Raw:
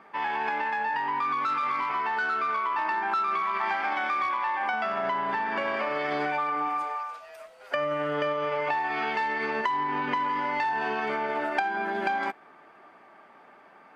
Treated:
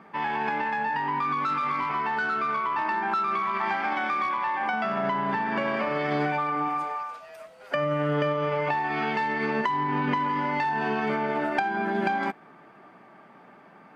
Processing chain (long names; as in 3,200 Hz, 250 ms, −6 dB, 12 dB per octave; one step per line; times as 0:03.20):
parametric band 160 Hz +13 dB 1.6 octaves